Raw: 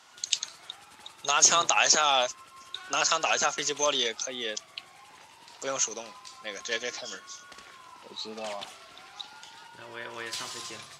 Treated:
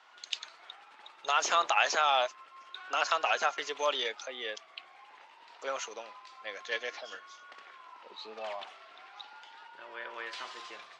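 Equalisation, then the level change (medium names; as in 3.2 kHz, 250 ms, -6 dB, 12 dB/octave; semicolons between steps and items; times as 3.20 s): band-pass 490–2800 Hz; -1.0 dB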